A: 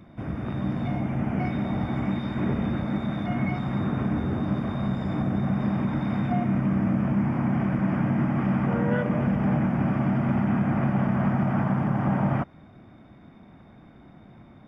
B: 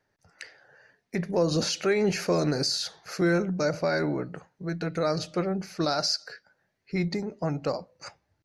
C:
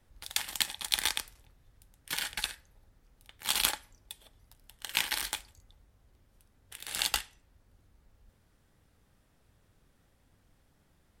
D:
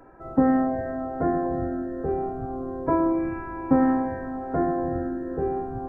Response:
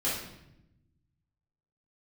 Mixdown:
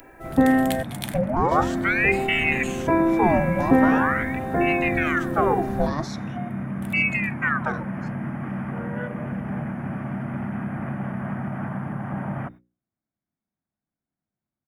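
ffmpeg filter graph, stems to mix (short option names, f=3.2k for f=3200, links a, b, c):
-filter_complex "[0:a]aemphasis=mode=production:type=50fm,agate=range=-35dB:threshold=-37dB:ratio=16:detection=peak,equalizer=f=1.7k:w=2.8:g=5,adelay=50,volume=-5dB[a];[1:a]equalizer=f=180:w=0.57:g=14,aeval=exprs='val(0)*sin(2*PI*1400*n/s+1400*0.75/0.43*sin(2*PI*0.43*n/s))':c=same,volume=-2.5dB,asplit=2[b][c];[2:a]adelay=100,volume=0.5dB[d];[3:a]aexciter=amount=8.6:drive=7.8:freq=2k,volume=2.5dB,asplit=3[e][f][g];[e]atrim=end=0.83,asetpts=PTS-STARTPTS,afade=t=out:st=0.826:d=0.004:c=hsin[h];[f]atrim=start=0.83:end=1.51,asetpts=PTS-STARTPTS,volume=0[i];[g]atrim=start=1.51,asetpts=PTS-STARTPTS,afade=t=in:d=0.004:c=hsin[j];[h][i][j]concat=n=3:v=0:a=1[k];[c]apad=whole_len=498353[l];[d][l]sidechaincompress=threshold=-45dB:ratio=8:attack=11:release=285[m];[a][b][m][k]amix=inputs=4:normalize=0,equalizer=f=5k:t=o:w=1.3:g=-10.5,bandreject=f=60:t=h:w=6,bandreject=f=120:t=h:w=6,bandreject=f=180:t=h:w=6,bandreject=f=240:t=h:w=6,bandreject=f=300:t=h:w=6,bandreject=f=360:t=h:w=6,bandreject=f=420:t=h:w=6,bandreject=f=480:t=h:w=6,bandreject=f=540:t=h:w=6"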